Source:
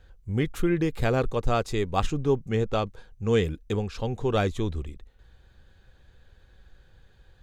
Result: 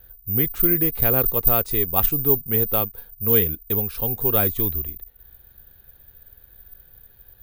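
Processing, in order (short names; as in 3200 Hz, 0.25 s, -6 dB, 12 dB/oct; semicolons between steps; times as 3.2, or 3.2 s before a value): careless resampling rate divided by 3×, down filtered, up zero stuff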